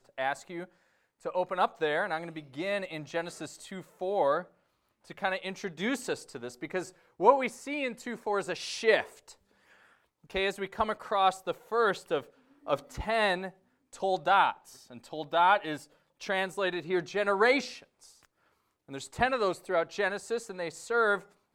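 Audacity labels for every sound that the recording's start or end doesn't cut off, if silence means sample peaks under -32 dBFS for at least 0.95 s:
10.350000	17.670000	sound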